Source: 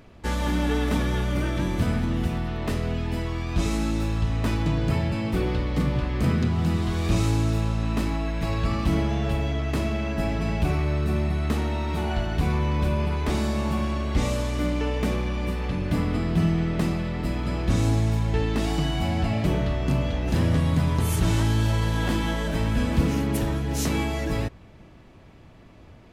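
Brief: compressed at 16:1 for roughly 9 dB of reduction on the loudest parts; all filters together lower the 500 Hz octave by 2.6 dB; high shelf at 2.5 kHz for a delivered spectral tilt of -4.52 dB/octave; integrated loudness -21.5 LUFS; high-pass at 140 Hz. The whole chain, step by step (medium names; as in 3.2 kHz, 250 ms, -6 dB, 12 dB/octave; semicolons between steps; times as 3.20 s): high-pass 140 Hz; peaking EQ 500 Hz -4 dB; treble shelf 2.5 kHz +8 dB; compression 16:1, threshold -29 dBFS; trim +12 dB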